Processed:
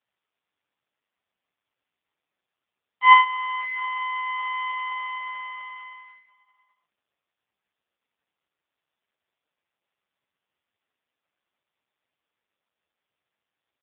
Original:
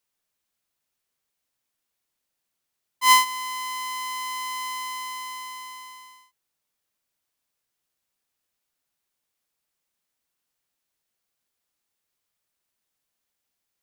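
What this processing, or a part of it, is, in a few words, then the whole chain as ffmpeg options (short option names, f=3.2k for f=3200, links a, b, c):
satellite phone: -af "highpass=320,lowpass=3k,aecho=1:1:575:0.106,volume=5.5dB" -ar 8000 -c:a libopencore_amrnb -b:a 4750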